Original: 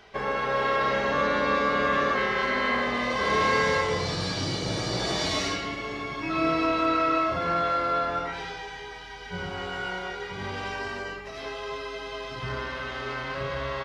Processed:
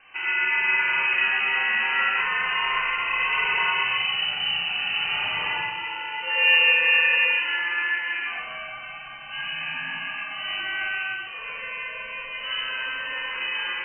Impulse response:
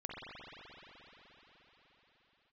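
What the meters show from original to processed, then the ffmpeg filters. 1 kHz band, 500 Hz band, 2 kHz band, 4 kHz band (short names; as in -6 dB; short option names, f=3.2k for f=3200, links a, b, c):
-4.0 dB, -13.5 dB, +8.5 dB, +8.0 dB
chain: -filter_complex "[1:a]atrim=start_sample=2205,afade=t=out:st=0.26:d=0.01,atrim=end_sample=11907,asetrate=61740,aresample=44100[a];[0:a][a]afir=irnorm=-1:irlink=0,lowpass=f=2.6k:t=q:w=0.5098,lowpass=f=2.6k:t=q:w=0.6013,lowpass=f=2.6k:t=q:w=0.9,lowpass=f=2.6k:t=q:w=2.563,afreqshift=-3100,volume=7.5dB"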